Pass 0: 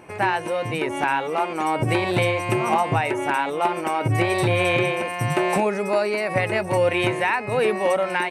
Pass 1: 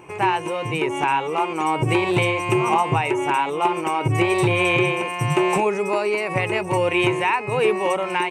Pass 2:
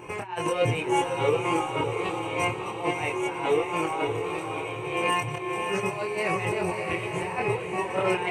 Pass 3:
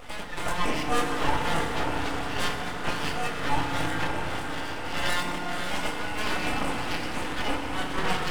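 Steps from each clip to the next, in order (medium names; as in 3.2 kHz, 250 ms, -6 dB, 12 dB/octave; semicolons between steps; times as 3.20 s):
rippled EQ curve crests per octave 0.71, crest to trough 8 dB
compressor with a negative ratio -26 dBFS, ratio -0.5; chorus voices 6, 0.26 Hz, delay 25 ms, depth 2.3 ms; echo that smears into a reverb 586 ms, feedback 47%, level -5 dB
full-wave rectifier; FDN reverb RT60 2.7 s, low-frequency decay 1.3×, high-frequency decay 0.45×, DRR 2.5 dB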